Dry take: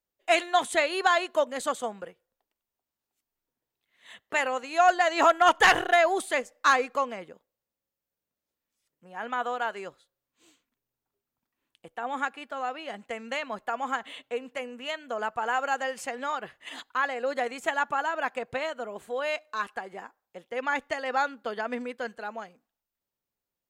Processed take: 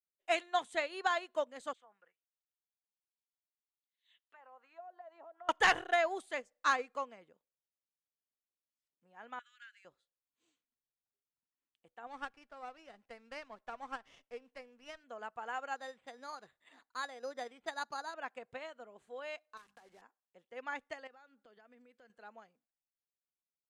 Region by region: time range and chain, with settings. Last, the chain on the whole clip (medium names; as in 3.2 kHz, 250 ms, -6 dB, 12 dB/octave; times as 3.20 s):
1.73–5.49 s: compression 5:1, threshold -32 dBFS + auto-wah 600–4600 Hz, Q 2.3, down, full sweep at -30 dBFS + bass shelf 500 Hz +6 dB
9.39–9.85 s: elliptic high-pass 1.6 kHz, stop band 50 dB + loudspeaker Doppler distortion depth 0.12 ms
12.07–15.04 s: peaking EQ 120 Hz -5.5 dB 2.3 oct + sliding maximum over 5 samples
15.76–18.14 s: careless resampling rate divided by 8×, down filtered, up hold + distance through air 59 m
19.57–20.02 s: block-companded coder 3-bit + hum notches 50/100/150/200/250 Hz + compression 4:1, threshold -37 dBFS
21.07–22.10 s: peaking EQ 970 Hz -5.5 dB 0.3 oct + compression 3:1, threshold -44 dBFS
whole clip: low-pass 8.9 kHz 12 dB/octave; upward expansion 1.5:1, over -38 dBFS; trim -7.5 dB